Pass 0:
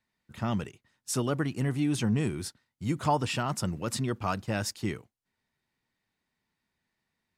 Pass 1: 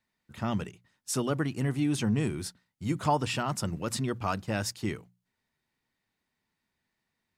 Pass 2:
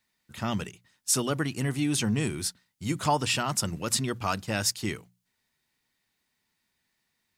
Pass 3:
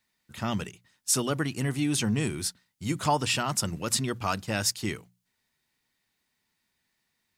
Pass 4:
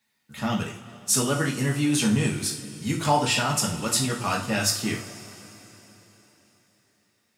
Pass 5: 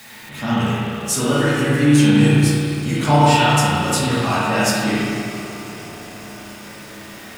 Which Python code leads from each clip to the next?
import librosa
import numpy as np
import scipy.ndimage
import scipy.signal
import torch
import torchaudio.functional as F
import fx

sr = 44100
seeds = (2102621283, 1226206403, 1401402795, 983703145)

y1 = fx.hum_notches(x, sr, base_hz=60, count=3)
y2 = fx.high_shelf(y1, sr, hz=2200.0, db=9.5)
y3 = y2
y4 = scipy.signal.sosfilt(scipy.signal.butter(2, 85.0, 'highpass', fs=sr, output='sos'), y3)
y4 = fx.rev_double_slope(y4, sr, seeds[0], early_s=0.38, late_s=4.0, knee_db=-20, drr_db=-2.5)
y5 = y4 + 0.5 * 10.0 ** (-36.5 / 20.0) * np.sign(y4)
y5 = fx.rev_spring(y5, sr, rt60_s=2.1, pass_ms=(34, 55), chirp_ms=55, drr_db=-7.0)